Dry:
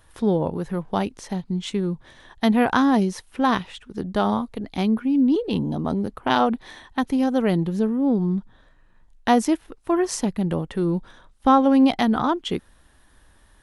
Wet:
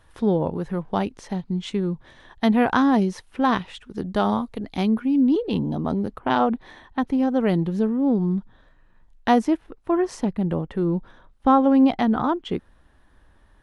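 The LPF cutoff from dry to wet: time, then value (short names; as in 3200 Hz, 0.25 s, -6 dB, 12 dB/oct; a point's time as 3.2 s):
LPF 6 dB/oct
4000 Hz
from 3.68 s 9500 Hz
from 5.29 s 4500 Hz
from 6.19 s 1800 Hz
from 7.43 s 4200 Hz
from 9.39 s 1700 Hz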